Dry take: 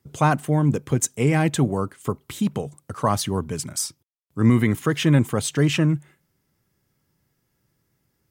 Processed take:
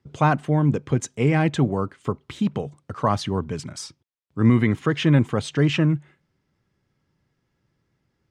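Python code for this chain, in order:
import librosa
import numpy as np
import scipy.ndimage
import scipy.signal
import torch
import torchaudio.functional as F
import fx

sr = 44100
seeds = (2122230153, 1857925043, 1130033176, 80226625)

y = scipy.signal.sosfilt(scipy.signal.butter(2, 4300.0, 'lowpass', fs=sr, output='sos'), x)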